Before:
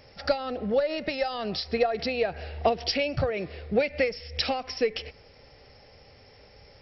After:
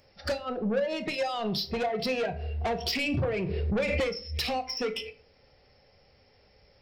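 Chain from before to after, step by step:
dynamic equaliser 110 Hz, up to +7 dB, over −51 dBFS, Q 1.7
noise reduction from a noise print of the clip's start 15 dB
in parallel at +0.5 dB: downward compressor, threshold −38 dBFS, peak gain reduction 18.5 dB
on the sum: soft clipping −25.5 dBFS, distortion −8 dB
on a send at −8 dB: convolution reverb RT60 0.50 s, pre-delay 5 ms
0:02.86–0:04.18: on the sum: background raised ahead of every attack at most 21 dB per second

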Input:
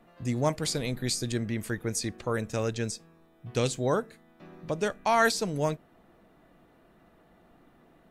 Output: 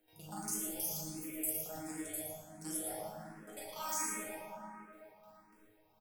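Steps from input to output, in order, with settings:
reversed piece by piece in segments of 43 ms
noise gate with hold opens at −49 dBFS
parametric band 1,800 Hz −7.5 dB 2.8 octaves
upward compression, threshold −41 dBFS
first-order pre-emphasis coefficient 0.9
resonators tuned to a chord D#2 fifth, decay 0.28 s
single-tap delay 151 ms −5 dB
dense smooth reverb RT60 4.3 s, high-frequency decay 0.3×, DRR −3 dB
wrong playback speed 33 rpm record played at 45 rpm
frequency shifter mixed with the dry sound +1.4 Hz
level +11 dB

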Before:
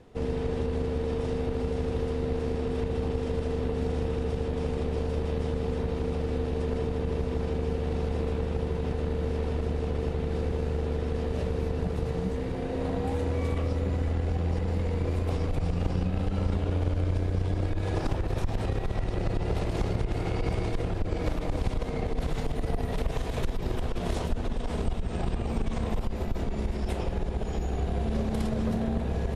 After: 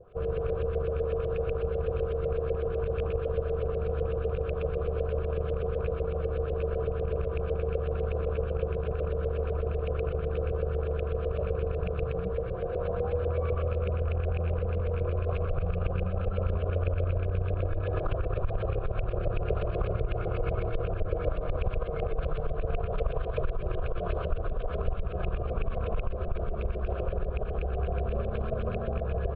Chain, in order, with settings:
loose part that buzzes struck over −23 dBFS, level −30 dBFS
auto-filter low-pass saw up 8 Hz 510–2,500 Hz
phaser with its sweep stopped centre 1,300 Hz, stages 8
far-end echo of a speakerphone 90 ms, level −21 dB

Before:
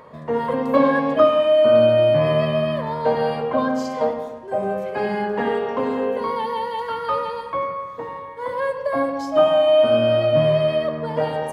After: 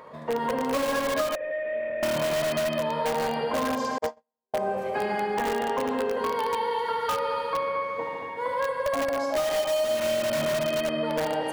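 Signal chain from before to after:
low-shelf EQ 200 Hz −9.5 dB
on a send: echo machine with several playback heads 74 ms, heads all three, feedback 53%, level −9 dB
0:03.98–0:04.54: on the sum: noise gate −18 dBFS, range −59 dB
in parallel at −4.5 dB: wrap-around overflow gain 15 dB
0:01.35–0:02.03: on the sum: formant resonators in series e
downward compressor 5 to 1, threshold −19 dBFS, peak gain reduction 10 dB
level −4.5 dB

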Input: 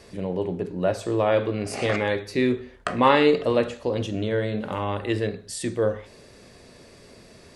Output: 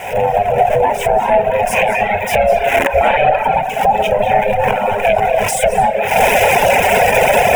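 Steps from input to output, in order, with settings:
converter with a step at zero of −27 dBFS
camcorder AGC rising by 57 dB per second
ring modulation 310 Hz
drawn EQ curve 150 Hz 0 dB, 540 Hz +15 dB, 8,400 Hz +3 dB
convolution reverb RT60 2.6 s, pre-delay 157 ms, DRR 2 dB
reverb reduction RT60 1.7 s
parametric band 2,500 Hz +9 dB 0.22 octaves
phaser with its sweep stopped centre 1,200 Hz, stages 6
boost into a limiter −0.5 dB
0:04.49–0:05.65: level that may fall only so fast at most 39 dB per second
level −1 dB

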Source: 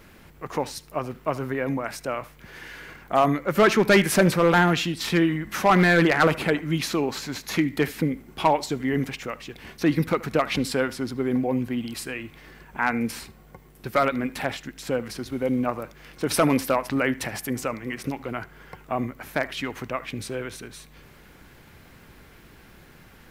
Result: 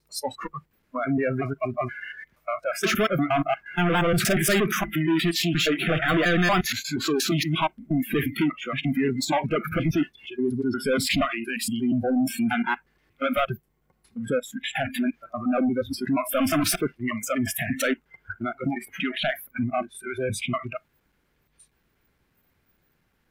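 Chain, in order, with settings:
slices reordered back to front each 118 ms, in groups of 8
soft clipping −26 dBFS, distortion −5 dB
noise reduction from a noise print of the clip's start 27 dB
level +7.5 dB

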